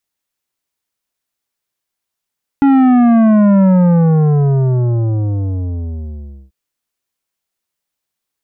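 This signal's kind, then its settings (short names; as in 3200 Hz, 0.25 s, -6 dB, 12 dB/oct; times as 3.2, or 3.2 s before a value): sub drop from 280 Hz, over 3.89 s, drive 11 dB, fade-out 2.88 s, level -7.5 dB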